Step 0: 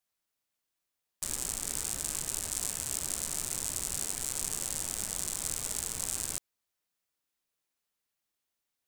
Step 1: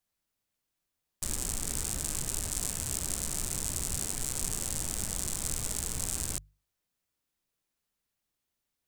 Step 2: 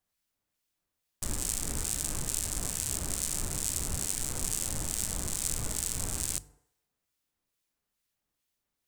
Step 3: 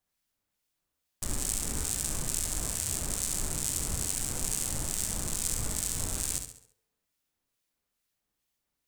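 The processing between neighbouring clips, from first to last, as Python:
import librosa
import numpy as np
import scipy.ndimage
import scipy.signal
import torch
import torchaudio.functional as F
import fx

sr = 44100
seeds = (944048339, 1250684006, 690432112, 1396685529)

y1 = fx.low_shelf(x, sr, hz=240.0, db=11.0)
y1 = fx.hum_notches(y1, sr, base_hz=50, count=3)
y2 = fx.rev_fdn(y1, sr, rt60_s=0.94, lf_ratio=0.7, hf_ratio=0.6, size_ms=20.0, drr_db=16.5)
y2 = fx.harmonic_tremolo(y2, sr, hz=2.3, depth_pct=50, crossover_hz=1800.0)
y2 = F.gain(torch.from_numpy(y2), 3.0).numpy()
y3 = fx.echo_feedback(y2, sr, ms=68, feedback_pct=43, wet_db=-7.5)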